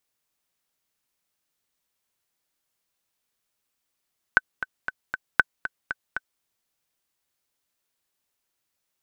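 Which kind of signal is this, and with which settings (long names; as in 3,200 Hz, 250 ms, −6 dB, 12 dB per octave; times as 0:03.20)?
click track 234 BPM, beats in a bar 4, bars 2, 1,520 Hz, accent 12.5 dB −2 dBFS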